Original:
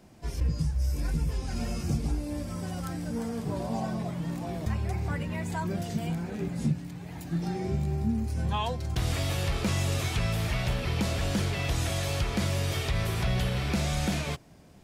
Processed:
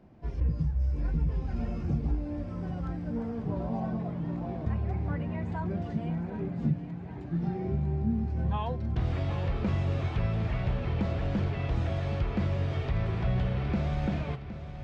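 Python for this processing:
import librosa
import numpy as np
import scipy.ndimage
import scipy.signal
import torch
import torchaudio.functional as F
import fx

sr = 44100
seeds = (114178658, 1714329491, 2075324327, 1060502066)

y = fx.spacing_loss(x, sr, db_at_10k=38)
y = fx.echo_feedback(y, sr, ms=765, feedback_pct=52, wet_db=-12.0)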